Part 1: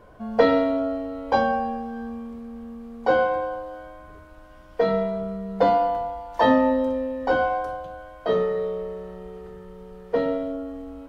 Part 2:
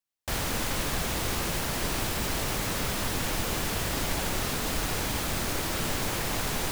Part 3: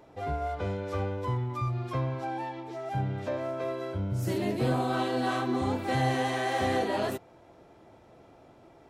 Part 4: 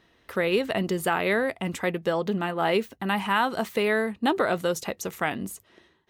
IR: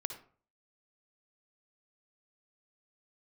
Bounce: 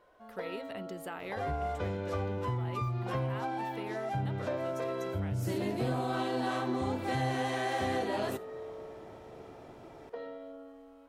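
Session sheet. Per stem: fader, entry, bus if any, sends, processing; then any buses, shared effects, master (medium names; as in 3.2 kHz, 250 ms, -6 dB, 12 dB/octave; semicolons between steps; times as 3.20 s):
-13.0 dB, 0.00 s, bus A, send -11.5 dB, none
mute
+2.0 dB, 1.20 s, no bus, send -10 dB, none
-16.0 dB, 0.00 s, no bus, no send, none
bus A: 0.0 dB, high-pass 360 Hz 12 dB/octave; compression, threshold -41 dBFS, peak gain reduction 14.5 dB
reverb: on, RT60 0.45 s, pre-delay 51 ms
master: compression 2:1, threshold -36 dBFS, peak gain reduction 10 dB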